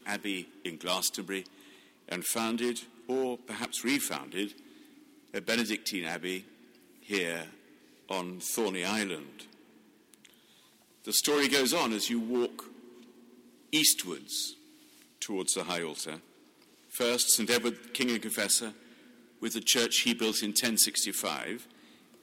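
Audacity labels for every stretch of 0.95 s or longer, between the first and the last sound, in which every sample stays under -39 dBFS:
12.640000	13.730000	silence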